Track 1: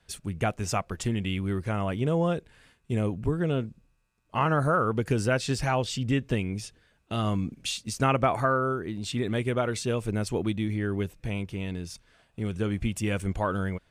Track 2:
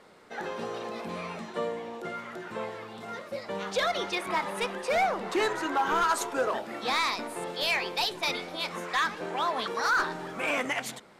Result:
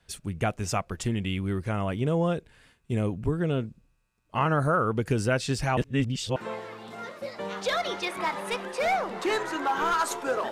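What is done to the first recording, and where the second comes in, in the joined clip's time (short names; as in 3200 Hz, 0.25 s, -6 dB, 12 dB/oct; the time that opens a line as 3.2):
track 1
5.77–6.36 reverse
6.36 switch to track 2 from 2.46 s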